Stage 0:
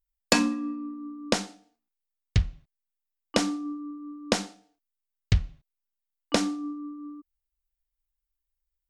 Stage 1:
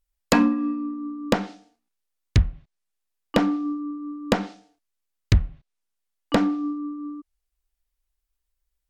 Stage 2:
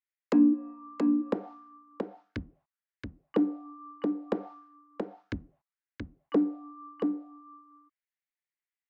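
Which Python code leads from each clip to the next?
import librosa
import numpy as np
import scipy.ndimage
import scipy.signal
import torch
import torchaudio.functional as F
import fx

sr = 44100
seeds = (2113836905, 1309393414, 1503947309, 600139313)

y1 = fx.env_lowpass_down(x, sr, base_hz=1700.0, full_db=-23.0)
y1 = np.clip(10.0 ** (16.5 / 20.0) * y1, -1.0, 1.0) / 10.0 ** (16.5 / 20.0)
y1 = F.gain(torch.from_numpy(y1), 6.5).numpy()
y2 = fx.auto_wah(y1, sr, base_hz=290.0, top_hz=2000.0, q=4.1, full_db=-15.5, direction='down')
y2 = y2 + 10.0 ** (-4.5 / 20.0) * np.pad(y2, (int(677 * sr / 1000.0), 0))[:len(y2)]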